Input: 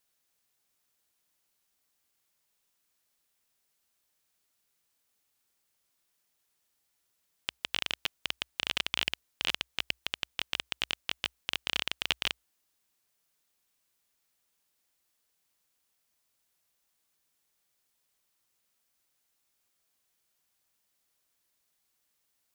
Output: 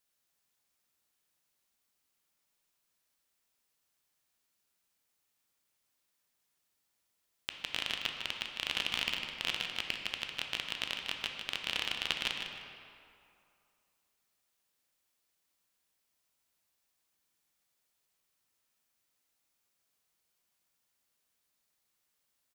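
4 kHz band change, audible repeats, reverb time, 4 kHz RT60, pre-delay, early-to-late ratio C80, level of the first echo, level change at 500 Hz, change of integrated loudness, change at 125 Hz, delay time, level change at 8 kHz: -2.0 dB, 2, 2.5 s, 1.5 s, 11 ms, 3.0 dB, -8.0 dB, -1.5 dB, -2.0 dB, -1.5 dB, 0.153 s, -3.0 dB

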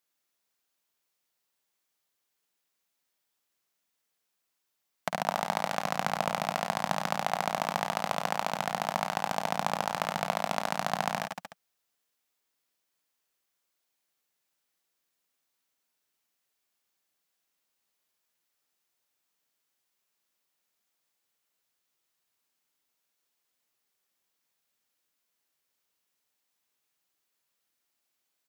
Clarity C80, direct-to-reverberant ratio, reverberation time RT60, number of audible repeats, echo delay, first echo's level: none, none, none, 4, 52 ms, -7.5 dB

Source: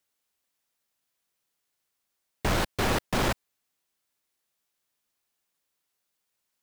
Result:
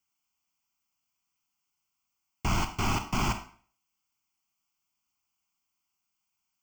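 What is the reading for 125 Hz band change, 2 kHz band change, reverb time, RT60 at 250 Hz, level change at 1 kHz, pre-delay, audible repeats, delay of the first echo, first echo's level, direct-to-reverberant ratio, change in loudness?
0.0 dB, -4.0 dB, 0.45 s, 0.45 s, -1.0 dB, 28 ms, none, none, none, 7.5 dB, -2.5 dB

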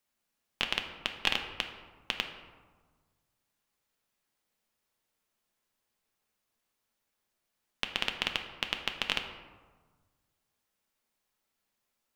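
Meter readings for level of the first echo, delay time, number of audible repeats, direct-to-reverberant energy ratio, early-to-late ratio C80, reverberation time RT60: none, none, none, 4.0 dB, 9.5 dB, 1.4 s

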